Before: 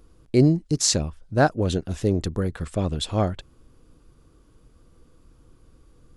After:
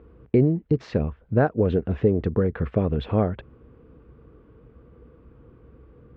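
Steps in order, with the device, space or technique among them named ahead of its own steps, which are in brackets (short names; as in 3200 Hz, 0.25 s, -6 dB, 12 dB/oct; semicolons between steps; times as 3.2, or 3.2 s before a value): bass amplifier (compressor 3:1, threshold -25 dBFS, peak gain reduction 10 dB; speaker cabinet 60–2400 Hz, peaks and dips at 62 Hz +9 dB, 130 Hz +4 dB, 220 Hz +5 dB, 450 Hz +9 dB); gain +4 dB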